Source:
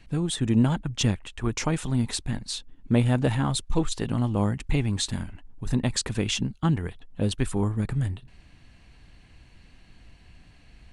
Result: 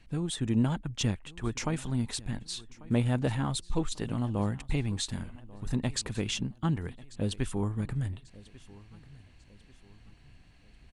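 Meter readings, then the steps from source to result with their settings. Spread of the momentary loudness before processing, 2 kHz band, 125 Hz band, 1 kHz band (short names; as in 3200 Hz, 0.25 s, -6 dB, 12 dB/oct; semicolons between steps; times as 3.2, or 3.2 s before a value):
9 LU, -5.5 dB, -5.5 dB, -5.5 dB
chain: feedback echo 1.142 s, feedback 40%, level -21 dB; gain -5.5 dB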